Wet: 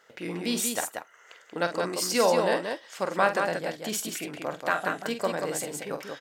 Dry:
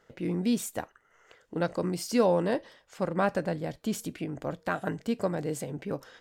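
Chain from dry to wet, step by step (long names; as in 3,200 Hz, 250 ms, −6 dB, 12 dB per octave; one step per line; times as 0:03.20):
high-pass filter 1,100 Hz 6 dB per octave
loudspeakers that aren't time-aligned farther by 16 metres −9 dB, 63 metres −5 dB
level +8 dB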